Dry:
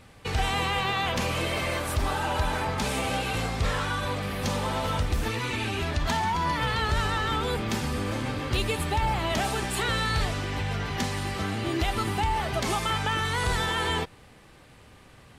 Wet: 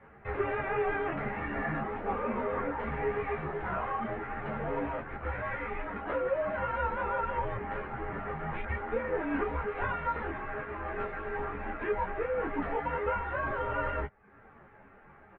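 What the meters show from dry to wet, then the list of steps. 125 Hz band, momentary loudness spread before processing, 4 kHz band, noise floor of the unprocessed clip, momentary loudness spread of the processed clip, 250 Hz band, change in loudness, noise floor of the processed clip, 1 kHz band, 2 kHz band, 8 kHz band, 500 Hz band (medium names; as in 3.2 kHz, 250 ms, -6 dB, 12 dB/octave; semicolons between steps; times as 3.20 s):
-12.0 dB, 4 LU, under -25 dB, -52 dBFS, 6 LU, -6.5 dB, -6.0 dB, -56 dBFS, -5.0 dB, -6.0 dB, under -40 dB, -0.5 dB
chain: reverb removal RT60 0.52 s; in parallel at -3 dB: wavefolder -33 dBFS; on the sum: doubling 23 ms -3.5 dB; mistuned SSB -370 Hz 410–2300 Hz; three-phase chorus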